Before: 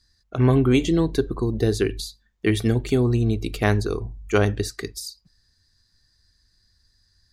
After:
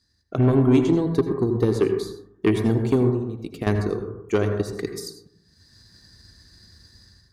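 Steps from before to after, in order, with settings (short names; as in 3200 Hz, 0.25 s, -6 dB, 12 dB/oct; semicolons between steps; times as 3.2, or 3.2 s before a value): HPF 70 Hz 12 dB/oct; bell 260 Hz +7 dB 2.7 oct; 3.1–3.67 compressor 5:1, threshold -25 dBFS, peak gain reduction 12.5 dB; transient shaper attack +5 dB, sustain -3 dB; AGC gain up to 16 dB; soft clip -7.5 dBFS, distortion -14 dB; reverb RT60 0.75 s, pre-delay 73 ms, DRR 6 dB; gain -4 dB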